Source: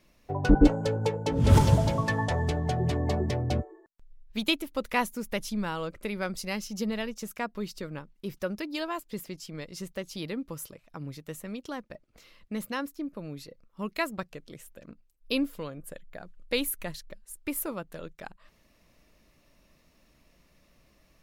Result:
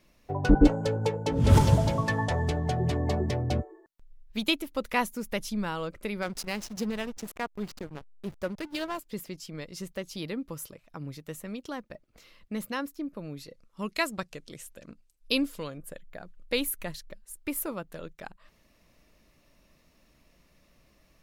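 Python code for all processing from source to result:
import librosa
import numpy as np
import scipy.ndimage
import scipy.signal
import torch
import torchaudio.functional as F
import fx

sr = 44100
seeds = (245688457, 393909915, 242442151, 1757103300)

y = fx.chain(x, sr, fx.high_shelf(hz=5000.0, db=6.0),
    fx.backlash(play_db=-32.0), at=(6.22, 8.98))
y = fx.chain(y, sr, fx.lowpass(hz=10000.0, slope=12),
    fx.high_shelf(hz=3600.0, db=9.5), at=(13.46, 15.78))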